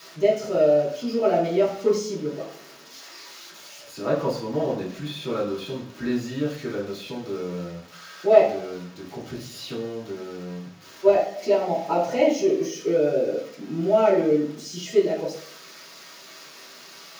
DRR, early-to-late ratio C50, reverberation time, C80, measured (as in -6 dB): -8.0 dB, 6.5 dB, 0.60 s, 10.0 dB